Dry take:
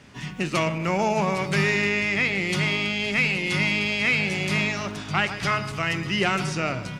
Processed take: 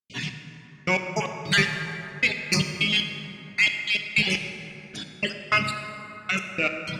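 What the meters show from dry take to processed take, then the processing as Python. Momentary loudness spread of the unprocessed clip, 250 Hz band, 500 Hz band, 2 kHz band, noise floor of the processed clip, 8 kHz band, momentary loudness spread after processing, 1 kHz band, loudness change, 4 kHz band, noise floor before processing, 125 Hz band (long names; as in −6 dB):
5 LU, −5.5 dB, −6.5 dB, −1.0 dB, −47 dBFS, +0.5 dB, 15 LU, −5.5 dB, −1.5 dB, +2.0 dB, −36 dBFS, −5.5 dB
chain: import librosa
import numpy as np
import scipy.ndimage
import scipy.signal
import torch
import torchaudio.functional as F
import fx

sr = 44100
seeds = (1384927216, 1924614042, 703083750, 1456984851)

y = fx.spec_dropout(x, sr, seeds[0], share_pct=24)
y = fx.weighting(y, sr, curve='D')
y = fx.dereverb_blind(y, sr, rt60_s=1.7)
y = fx.low_shelf(y, sr, hz=270.0, db=7.0)
y = fx.rotary_switch(y, sr, hz=5.0, then_hz=0.8, switch_at_s=2.63)
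y = 10.0 ** (-13.0 / 20.0) * np.tanh(y / 10.0 ** (-13.0 / 20.0))
y = fx.step_gate(y, sr, bpm=155, pattern='.xx......x..x.', floor_db=-60.0, edge_ms=4.5)
y = fx.rev_plate(y, sr, seeds[1], rt60_s=3.6, hf_ratio=0.4, predelay_ms=0, drr_db=4.5)
y = F.gain(torch.from_numpy(y), 3.0).numpy()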